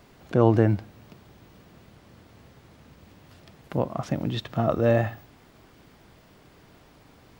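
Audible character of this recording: noise floor -55 dBFS; spectral tilt -6.5 dB/oct

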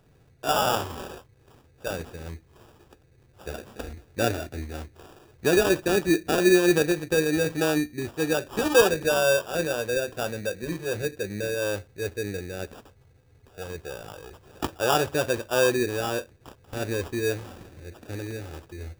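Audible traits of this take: aliases and images of a low sample rate 2100 Hz, jitter 0%

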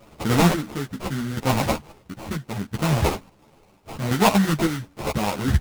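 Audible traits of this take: a quantiser's noise floor 10-bit, dither triangular; chopped level 0.73 Hz, depth 60%, duty 40%; aliases and images of a low sample rate 1700 Hz, jitter 20%; a shimmering, thickened sound

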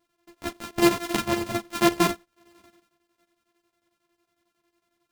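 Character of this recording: a buzz of ramps at a fixed pitch in blocks of 128 samples; chopped level 11 Hz, depth 65%, duty 65%; a shimmering, thickened sound

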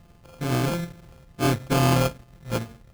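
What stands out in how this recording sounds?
a buzz of ramps at a fixed pitch in blocks of 64 samples; phasing stages 4, 2.3 Hz, lowest notch 590–1500 Hz; aliases and images of a low sample rate 1900 Hz, jitter 0%

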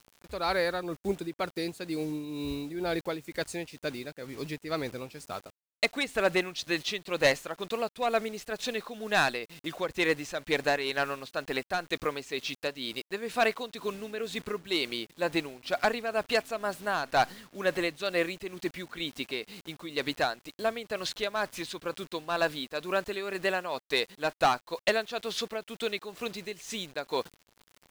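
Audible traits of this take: a quantiser's noise floor 8-bit, dither none; tremolo triangle 2.1 Hz, depth 65%

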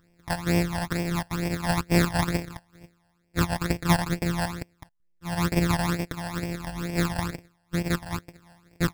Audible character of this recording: a buzz of ramps at a fixed pitch in blocks of 256 samples; tremolo saw down 0.6 Hz, depth 60%; aliases and images of a low sample rate 3000 Hz, jitter 0%; phasing stages 12, 2.2 Hz, lowest notch 380–1300 Hz

